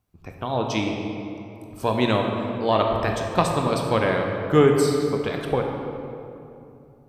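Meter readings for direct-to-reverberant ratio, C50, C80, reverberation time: 1.5 dB, 2.5 dB, 3.5 dB, 2.8 s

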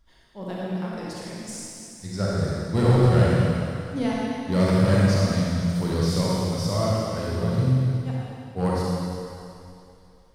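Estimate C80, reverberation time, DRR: -2.0 dB, 2.7 s, -6.0 dB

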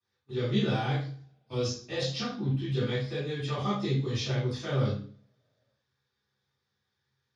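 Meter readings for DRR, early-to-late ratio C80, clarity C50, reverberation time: -15.0 dB, 7.5 dB, 1.5 dB, 0.45 s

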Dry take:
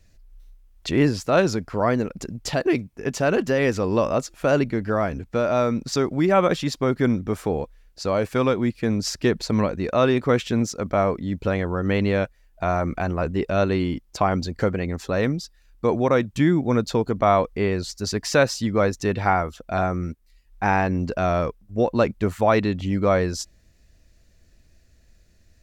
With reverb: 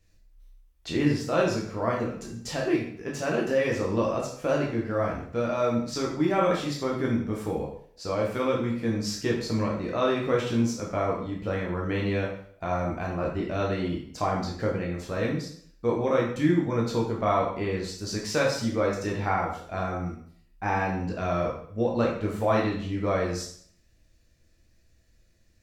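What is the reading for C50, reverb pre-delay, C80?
4.0 dB, 6 ms, 8.0 dB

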